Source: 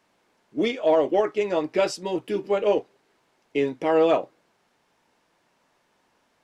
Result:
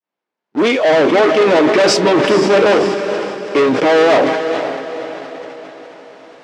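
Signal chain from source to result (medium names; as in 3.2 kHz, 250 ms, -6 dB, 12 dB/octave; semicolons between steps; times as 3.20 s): fade-in on the opening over 1.51 s; in parallel at +1.5 dB: peak limiter -20 dBFS, peak gain reduction 9.5 dB; on the sum: waveshaping leveller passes 5; Bessel high-pass 210 Hz, order 2; reverse; upward compressor, threshold -26 dBFS; reverse; distance through air 96 m; echo that smears into a reverb 471 ms, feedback 50%, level -9 dB; decay stretcher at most 38 dB/s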